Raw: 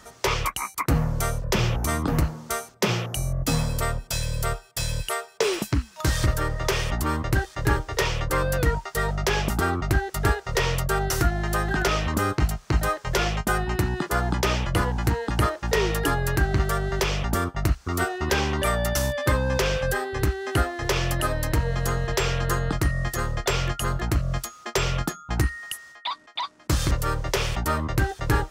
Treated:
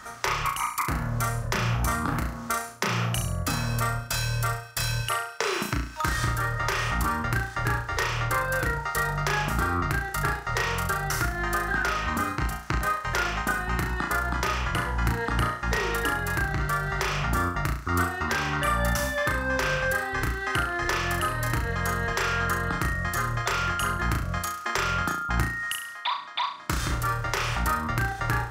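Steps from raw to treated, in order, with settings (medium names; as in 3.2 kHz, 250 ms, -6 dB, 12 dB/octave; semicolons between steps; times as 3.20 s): FFT filter 290 Hz 0 dB, 480 Hz -3 dB, 1.4 kHz +10 dB, 3.1 kHz +1 dB; compression, threshold -25 dBFS, peak gain reduction 12 dB; flutter echo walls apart 5.9 m, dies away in 0.45 s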